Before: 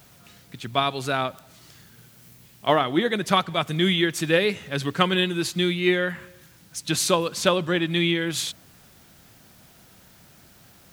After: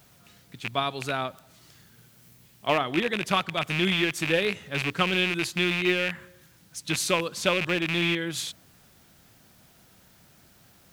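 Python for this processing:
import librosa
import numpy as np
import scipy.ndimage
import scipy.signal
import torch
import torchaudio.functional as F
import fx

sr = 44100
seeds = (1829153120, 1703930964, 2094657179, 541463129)

y = fx.rattle_buzz(x, sr, strikes_db=-31.0, level_db=-12.0)
y = F.gain(torch.from_numpy(y), -4.5).numpy()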